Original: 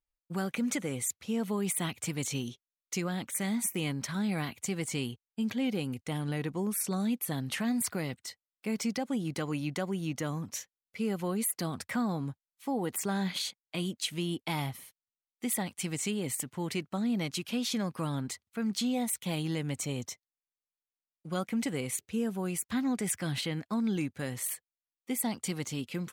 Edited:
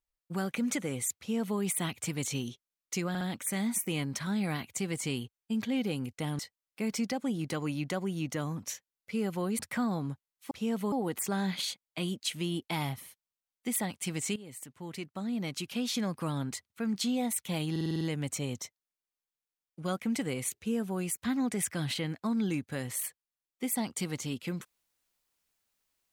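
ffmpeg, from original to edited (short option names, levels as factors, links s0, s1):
-filter_complex "[0:a]asplit=14[s0][s1][s2][s3][s4][s5][s6][s7][s8][s9][s10][s11][s12][s13];[s0]atrim=end=3.152[s14];[s1]atrim=start=3.088:end=3.152[s15];[s2]atrim=start=3.088:end=6.272[s16];[s3]atrim=start=8.248:end=11.452[s17];[s4]atrim=start=11.768:end=12.692[s18];[s5]atrim=start=1.178:end=1.592[s19];[s6]atrim=start=12.688:end=16.13,asetpts=PTS-STARTPTS,afade=t=out:st=3.438:d=0.004:c=hsin:silence=0.16788[s20];[s7]atrim=start=16.13:end=19.532,asetpts=PTS-STARTPTS,afade=t=in:d=1.61:silence=0.16788[s21];[s8]atrim=start=19.478:end=19.532[s22];[s9]atrim=start=19.478:end=19.532[s23];[s10]atrim=start=19.478:end=19.532[s24];[s11]atrim=start=19.478:end=19.532[s25];[s12]atrim=start=19.478:end=19.532[s26];[s13]atrim=start=19.478[s27];[s14][s15]acrossfade=d=0.004:c1=hsin:c2=hsin[s28];[s28][s16]acrossfade=d=0.004:c1=hsin:c2=hsin[s29];[s29][s17]acrossfade=d=0.004:c1=hsin:c2=hsin[s30];[s30][s18]acrossfade=d=0.004:c1=hsin:c2=hsin[s31];[s31][s19]acrossfade=d=0.004:c1=hsin:c2=hsin[s32];[s20][s21]concat=n=2:v=0:a=1[s33];[s32][s33]acrossfade=d=0.004:c1=hsin:c2=hsin[s34];[s34][s22]acrossfade=d=0.004:c1=hsin:c2=hsin[s35];[s35][s23]acrossfade=d=0.004:c1=hsin:c2=hsin[s36];[s36][s24]acrossfade=d=0.004:c1=hsin:c2=hsin[s37];[s37][s25]acrossfade=d=0.004:c1=hsin:c2=hsin[s38];[s38][s26]acrossfade=d=0.004:c1=hsin:c2=hsin[s39];[s39][s27]acrossfade=d=0.004:c1=hsin:c2=hsin"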